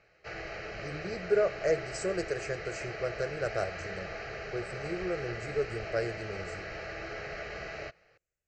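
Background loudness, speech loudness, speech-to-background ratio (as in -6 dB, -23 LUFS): -40.0 LUFS, -34.5 LUFS, 5.5 dB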